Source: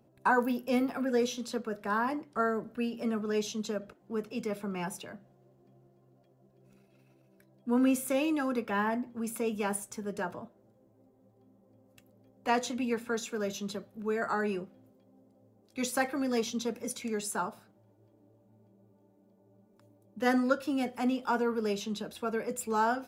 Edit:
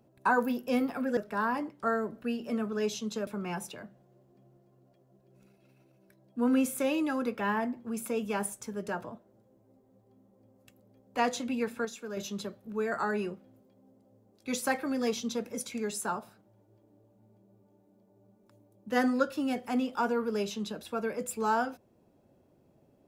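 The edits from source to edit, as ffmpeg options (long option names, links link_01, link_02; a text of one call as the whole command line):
ffmpeg -i in.wav -filter_complex "[0:a]asplit=5[link_01][link_02][link_03][link_04][link_05];[link_01]atrim=end=1.172[link_06];[link_02]atrim=start=1.698:end=3.802[link_07];[link_03]atrim=start=4.568:end=13.152[link_08];[link_04]atrim=start=13.148:end=13.472,asetpts=PTS-STARTPTS,volume=-5.5dB[link_09];[link_05]atrim=start=13.468[link_10];[link_06][link_07]acrossfade=duration=0.004:curve1=hsin:curve2=hsin[link_11];[link_11][link_08]acrossfade=duration=0.004:curve1=hsin:curve2=hsin[link_12];[link_12][link_09]acrossfade=duration=0.004:curve1=hsin:curve2=hsin[link_13];[link_13][link_10]acrossfade=duration=0.004:curve1=hsin:curve2=hsin" out.wav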